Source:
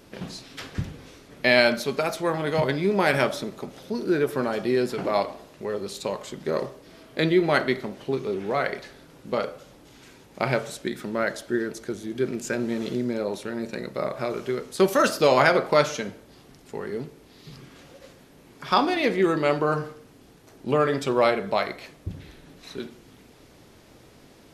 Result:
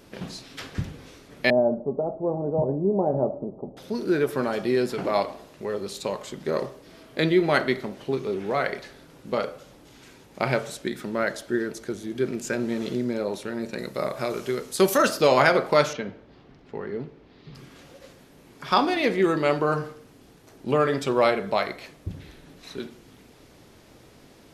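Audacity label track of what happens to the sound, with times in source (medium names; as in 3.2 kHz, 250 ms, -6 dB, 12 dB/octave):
1.500000	3.770000	steep low-pass 810 Hz
13.780000	14.980000	treble shelf 5.1 kHz +9 dB
15.930000	17.550000	distance through air 240 m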